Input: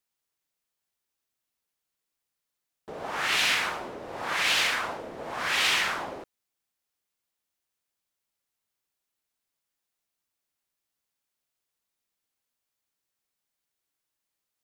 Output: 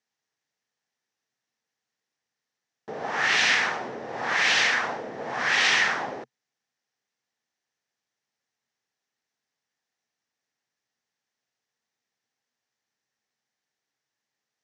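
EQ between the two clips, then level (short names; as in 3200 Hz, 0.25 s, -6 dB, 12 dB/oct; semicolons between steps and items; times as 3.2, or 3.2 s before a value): speaker cabinet 110–6600 Hz, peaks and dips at 130 Hz +7 dB, 230 Hz +6 dB, 450 Hz +5 dB, 780 Hz +6 dB, 1800 Hz +9 dB, 5800 Hz +6 dB; 0.0 dB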